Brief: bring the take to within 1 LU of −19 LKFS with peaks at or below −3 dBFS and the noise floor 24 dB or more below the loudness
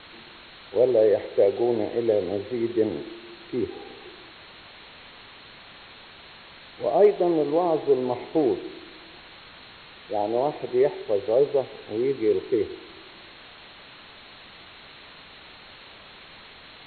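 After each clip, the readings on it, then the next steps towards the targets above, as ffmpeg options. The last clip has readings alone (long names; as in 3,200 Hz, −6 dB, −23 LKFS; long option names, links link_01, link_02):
background noise floor −47 dBFS; target noise floor −48 dBFS; integrated loudness −24.0 LKFS; sample peak −8.5 dBFS; target loudness −19.0 LKFS
→ -af "afftdn=noise_reduction=6:noise_floor=-47"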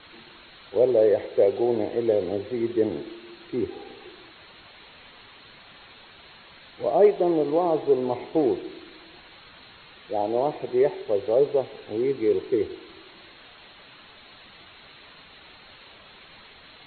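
background noise floor −50 dBFS; integrated loudness −24.0 LKFS; sample peak −8.5 dBFS; target loudness −19.0 LKFS
→ -af "volume=5dB"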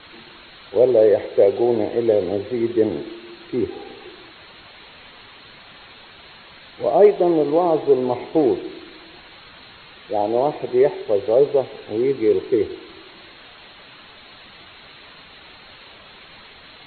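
integrated loudness −19.0 LKFS; sample peak −3.5 dBFS; background noise floor −45 dBFS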